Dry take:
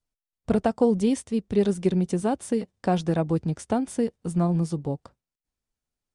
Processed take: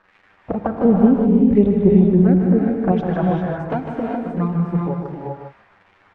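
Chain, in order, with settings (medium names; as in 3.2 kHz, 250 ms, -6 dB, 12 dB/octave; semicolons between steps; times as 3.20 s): 0.85–2.92 s: tilt EQ -3 dB/octave; level rider gain up to 5.5 dB; crackle 340 per s -33 dBFS; LFO low-pass sine 1.4 Hz 840–2100 Hz; touch-sensitive flanger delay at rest 10.7 ms, full sweep at -9.5 dBFS; delay 152 ms -7.5 dB; gated-style reverb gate 430 ms rising, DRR 0 dB; trim -2 dB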